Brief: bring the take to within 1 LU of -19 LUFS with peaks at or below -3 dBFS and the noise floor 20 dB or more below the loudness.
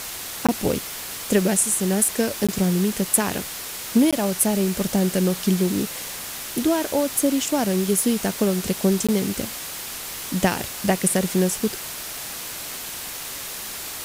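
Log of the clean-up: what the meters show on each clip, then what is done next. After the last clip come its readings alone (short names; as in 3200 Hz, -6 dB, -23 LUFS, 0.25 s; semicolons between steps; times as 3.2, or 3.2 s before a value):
dropouts 4; longest dropout 16 ms; noise floor -33 dBFS; noise floor target -43 dBFS; loudness -22.5 LUFS; peak -3.0 dBFS; loudness target -19.0 LUFS
-> interpolate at 0.47/2.47/4.11/9.07, 16 ms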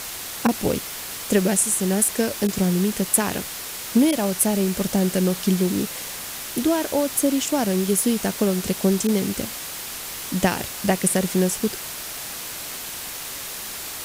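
dropouts 0; noise floor -33 dBFS; noise floor target -43 dBFS
-> denoiser 10 dB, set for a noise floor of -33 dBFS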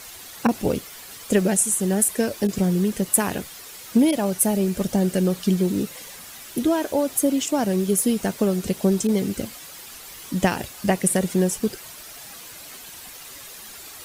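noise floor -41 dBFS; noise floor target -42 dBFS
-> denoiser 6 dB, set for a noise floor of -41 dBFS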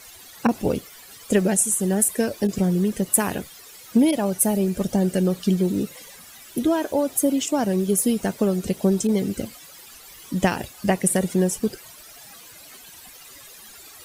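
noise floor -45 dBFS; loudness -22.5 LUFS; peak -3.0 dBFS; loudness target -19.0 LUFS
-> gain +3.5 dB; limiter -3 dBFS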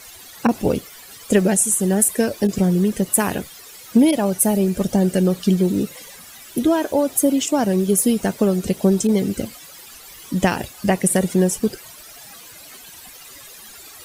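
loudness -19.0 LUFS; peak -3.0 dBFS; noise floor -42 dBFS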